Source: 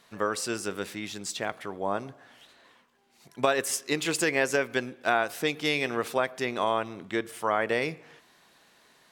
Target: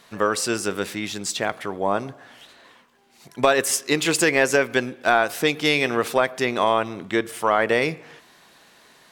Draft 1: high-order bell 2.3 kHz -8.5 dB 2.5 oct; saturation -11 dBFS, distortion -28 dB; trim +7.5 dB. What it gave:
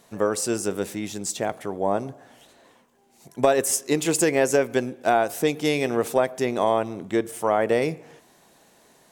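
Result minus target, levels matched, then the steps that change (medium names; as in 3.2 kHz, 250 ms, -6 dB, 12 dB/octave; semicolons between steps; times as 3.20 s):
2 kHz band -6.5 dB
remove: high-order bell 2.3 kHz -8.5 dB 2.5 oct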